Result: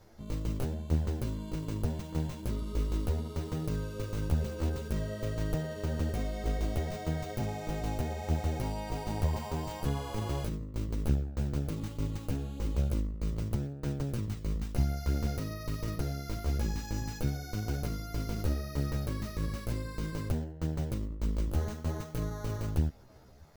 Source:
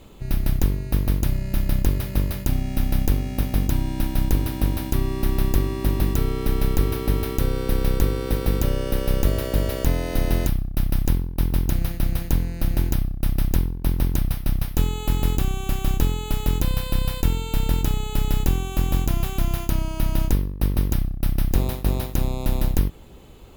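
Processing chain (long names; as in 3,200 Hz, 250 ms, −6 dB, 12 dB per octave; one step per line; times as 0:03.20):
pitch shifter +8.5 semitones
multi-voice chorus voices 2, 0.54 Hz, delay 11 ms, depth 4.7 ms
level −8.5 dB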